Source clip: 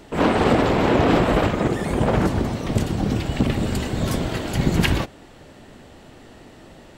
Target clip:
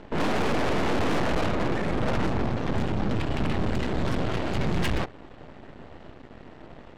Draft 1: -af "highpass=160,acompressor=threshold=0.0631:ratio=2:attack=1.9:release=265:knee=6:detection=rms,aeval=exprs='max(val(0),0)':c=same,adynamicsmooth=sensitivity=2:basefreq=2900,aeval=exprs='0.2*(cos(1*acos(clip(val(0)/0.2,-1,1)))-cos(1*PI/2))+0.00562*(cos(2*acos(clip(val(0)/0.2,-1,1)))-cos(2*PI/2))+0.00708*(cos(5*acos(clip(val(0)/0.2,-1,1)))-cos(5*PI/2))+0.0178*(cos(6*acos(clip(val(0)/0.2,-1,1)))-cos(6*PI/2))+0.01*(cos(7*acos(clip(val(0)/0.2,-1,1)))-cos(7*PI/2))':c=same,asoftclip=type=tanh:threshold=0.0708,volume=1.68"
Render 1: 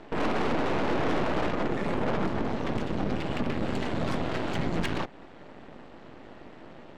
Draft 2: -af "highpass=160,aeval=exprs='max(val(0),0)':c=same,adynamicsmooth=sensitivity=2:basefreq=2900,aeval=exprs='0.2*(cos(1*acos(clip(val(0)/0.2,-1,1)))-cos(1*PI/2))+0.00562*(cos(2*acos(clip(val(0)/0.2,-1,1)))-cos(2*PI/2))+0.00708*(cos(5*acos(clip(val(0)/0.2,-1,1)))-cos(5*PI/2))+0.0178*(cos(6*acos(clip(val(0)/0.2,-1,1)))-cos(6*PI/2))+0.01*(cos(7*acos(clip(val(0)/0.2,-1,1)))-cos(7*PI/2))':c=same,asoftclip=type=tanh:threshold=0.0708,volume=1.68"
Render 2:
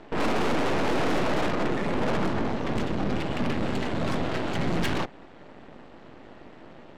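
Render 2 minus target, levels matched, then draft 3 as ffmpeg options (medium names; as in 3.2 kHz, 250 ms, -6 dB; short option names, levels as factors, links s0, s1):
125 Hz band -3.0 dB
-af "aeval=exprs='max(val(0),0)':c=same,adynamicsmooth=sensitivity=2:basefreq=2900,aeval=exprs='0.2*(cos(1*acos(clip(val(0)/0.2,-1,1)))-cos(1*PI/2))+0.00562*(cos(2*acos(clip(val(0)/0.2,-1,1)))-cos(2*PI/2))+0.00708*(cos(5*acos(clip(val(0)/0.2,-1,1)))-cos(5*PI/2))+0.0178*(cos(6*acos(clip(val(0)/0.2,-1,1)))-cos(6*PI/2))+0.01*(cos(7*acos(clip(val(0)/0.2,-1,1)))-cos(7*PI/2))':c=same,asoftclip=type=tanh:threshold=0.0708,volume=1.68"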